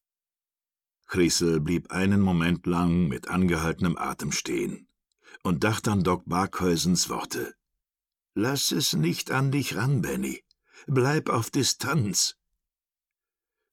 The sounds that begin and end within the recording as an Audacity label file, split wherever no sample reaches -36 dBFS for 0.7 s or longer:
1.100000	7.500000	sound
8.370000	12.310000	sound